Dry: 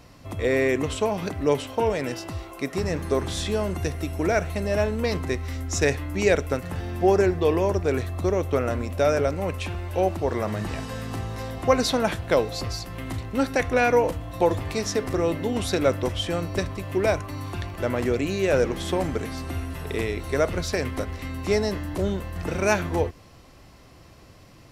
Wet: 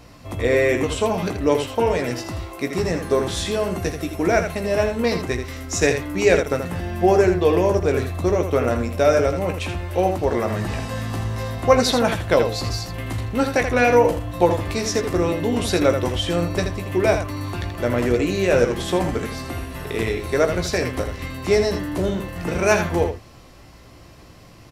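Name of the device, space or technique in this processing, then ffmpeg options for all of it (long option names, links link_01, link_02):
slapback doubling: -filter_complex "[0:a]asplit=3[link_01][link_02][link_03];[link_02]adelay=17,volume=-7dB[link_04];[link_03]adelay=81,volume=-7.5dB[link_05];[link_01][link_04][link_05]amix=inputs=3:normalize=0,volume=3dB"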